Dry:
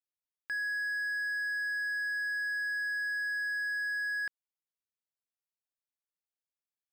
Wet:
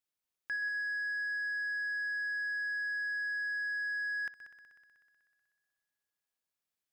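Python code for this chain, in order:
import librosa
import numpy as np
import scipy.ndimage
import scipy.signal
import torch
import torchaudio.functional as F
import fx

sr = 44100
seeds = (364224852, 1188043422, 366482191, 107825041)

y = 10.0 ** (-35.0 / 20.0) * np.tanh(x / 10.0 ** (-35.0 / 20.0))
y = fx.echo_heads(y, sr, ms=62, heads='all three', feedback_pct=67, wet_db=-15.5)
y = F.gain(torch.from_numpy(y), 3.5).numpy()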